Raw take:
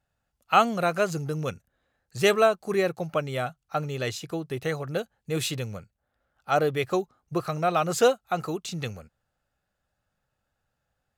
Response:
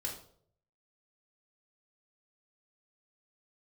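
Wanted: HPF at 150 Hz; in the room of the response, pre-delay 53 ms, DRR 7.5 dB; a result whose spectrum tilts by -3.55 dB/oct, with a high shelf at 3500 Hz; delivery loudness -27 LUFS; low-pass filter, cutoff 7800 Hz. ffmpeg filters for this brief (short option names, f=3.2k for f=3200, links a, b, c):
-filter_complex "[0:a]highpass=150,lowpass=7.8k,highshelf=f=3.5k:g=8.5,asplit=2[a][b];[1:a]atrim=start_sample=2205,adelay=53[c];[b][c]afir=irnorm=-1:irlink=0,volume=-8dB[d];[a][d]amix=inputs=2:normalize=0,volume=-1.5dB"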